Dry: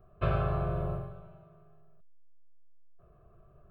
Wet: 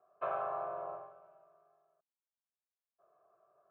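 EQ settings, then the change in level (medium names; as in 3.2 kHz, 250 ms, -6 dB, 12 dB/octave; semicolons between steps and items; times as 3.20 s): dynamic bell 900 Hz, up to +5 dB, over -52 dBFS, Q 2.1; ladder band-pass 950 Hz, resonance 30%; distance through air 91 m; +7.5 dB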